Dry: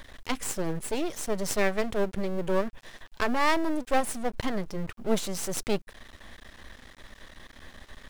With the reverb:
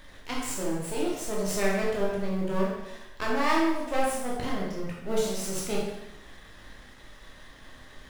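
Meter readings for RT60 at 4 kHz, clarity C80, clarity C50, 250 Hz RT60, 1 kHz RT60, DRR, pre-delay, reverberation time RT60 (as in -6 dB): 0.80 s, 4.0 dB, 1.0 dB, 0.90 s, 0.90 s, -4.5 dB, 13 ms, 0.90 s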